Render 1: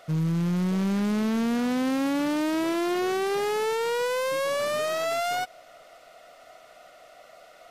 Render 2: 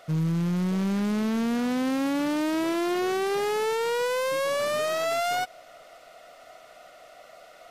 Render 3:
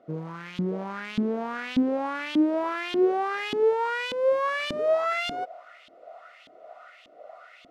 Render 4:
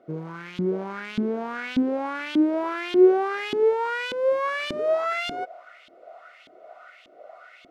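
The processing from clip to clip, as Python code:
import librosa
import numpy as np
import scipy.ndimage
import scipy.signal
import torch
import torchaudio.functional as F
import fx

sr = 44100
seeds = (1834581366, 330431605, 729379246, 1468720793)

y1 = fx.rider(x, sr, range_db=10, speed_s=0.5)
y2 = fx.filter_lfo_bandpass(y1, sr, shape='saw_up', hz=1.7, low_hz=250.0, high_hz=3400.0, q=3.1)
y2 = F.gain(torch.from_numpy(y2), 9.0).numpy()
y3 = fx.small_body(y2, sr, hz=(370.0, 1500.0, 2200.0), ring_ms=45, db=7)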